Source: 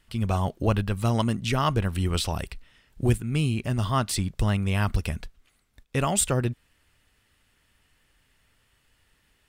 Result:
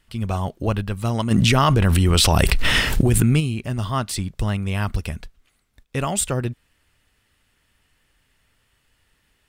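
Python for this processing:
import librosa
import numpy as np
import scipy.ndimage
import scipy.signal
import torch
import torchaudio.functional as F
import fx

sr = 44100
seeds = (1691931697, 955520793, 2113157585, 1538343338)

y = fx.env_flatten(x, sr, amount_pct=100, at=(1.3, 3.39), fade=0.02)
y = y * 10.0 ** (1.0 / 20.0)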